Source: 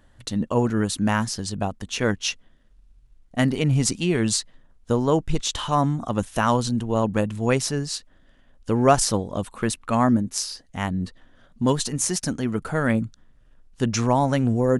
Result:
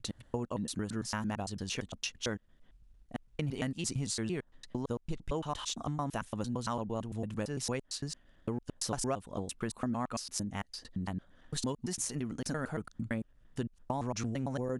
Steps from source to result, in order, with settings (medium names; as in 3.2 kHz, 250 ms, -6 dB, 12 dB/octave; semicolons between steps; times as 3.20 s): slices played last to first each 113 ms, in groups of 3; compression 3:1, threshold -27 dBFS, peak gain reduction 12.5 dB; trim -6.5 dB